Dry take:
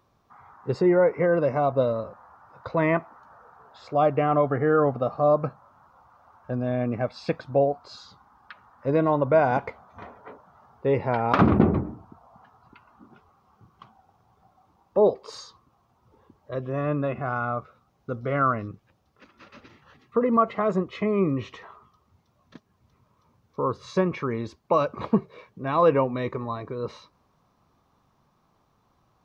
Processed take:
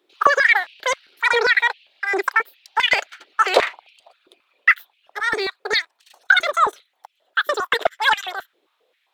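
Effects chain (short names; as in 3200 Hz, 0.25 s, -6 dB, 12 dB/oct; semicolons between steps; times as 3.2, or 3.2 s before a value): wide varispeed 3.2×; sample leveller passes 1; stepped high-pass 7.5 Hz 360–2600 Hz; gain -3 dB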